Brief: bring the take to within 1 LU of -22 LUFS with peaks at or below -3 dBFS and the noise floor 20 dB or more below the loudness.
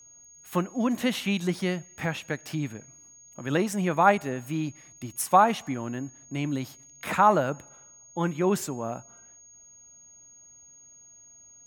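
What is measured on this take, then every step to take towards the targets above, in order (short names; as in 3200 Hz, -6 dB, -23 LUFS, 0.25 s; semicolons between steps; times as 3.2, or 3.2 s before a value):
steady tone 6600 Hz; tone level -50 dBFS; loudness -27.0 LUFS; peak -6.0 dBFS; loudness target -22.0 LUFS
-> notch 6600 Hz, Q 30; gain +5 dB; limiter -3 dBFS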